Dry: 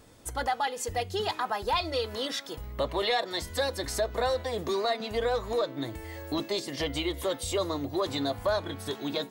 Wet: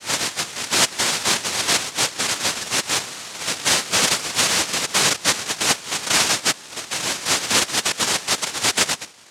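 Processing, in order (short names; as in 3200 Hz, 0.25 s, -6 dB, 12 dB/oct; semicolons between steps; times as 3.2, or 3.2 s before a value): whole clip reversed; notches 60/120/180/240/300/360 Hz; noise vocoder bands 1; gain +9 dB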